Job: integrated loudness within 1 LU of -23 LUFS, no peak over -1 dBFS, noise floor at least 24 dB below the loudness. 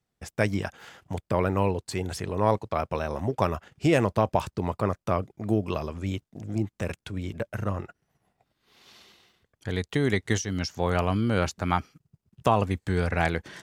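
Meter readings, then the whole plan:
loudness -28.0 LUFS; peak -7.0 dBFS; loudness target -23.0 LUFS
-> gain +5 dB

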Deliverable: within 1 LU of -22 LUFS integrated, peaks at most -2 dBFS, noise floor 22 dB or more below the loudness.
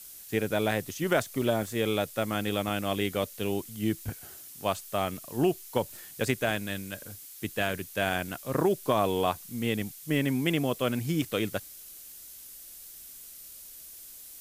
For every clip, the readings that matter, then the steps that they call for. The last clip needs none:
dropouts 4; longest dropout 1.7 ms; noise floor -47 dBFS; noise floor target -52 dBFS; loudness -30.0 LUFS; peak -12.0 dBFS; loudness target -22.0 LUFS
-> interpolate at 1.42/2.23/6.57/11.22, 1.7 ms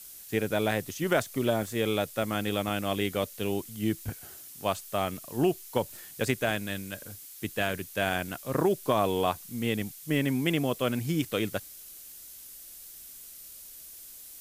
dropouts 0; noise floor -47 dBFS; noise floor target -52 dBFS
-> noise print and reduce 6 dB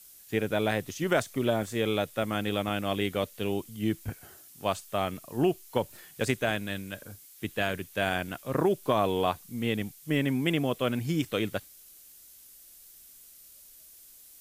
noise floor -53 dBFS; loudness -30.0 LUFS; peak -12.5 dBFS; loudness target -22.0 LUFS
-> gain +8 dB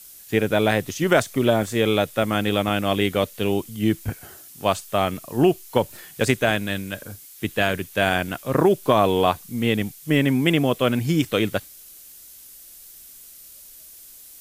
loudness -22.0 LUFS; peak -4.5 dBFS; noise floor -45 dBFS

